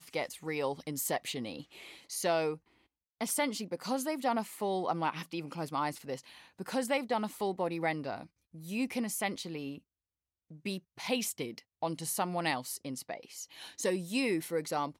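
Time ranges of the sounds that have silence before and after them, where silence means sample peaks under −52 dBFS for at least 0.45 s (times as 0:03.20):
0:03.21–0:09.79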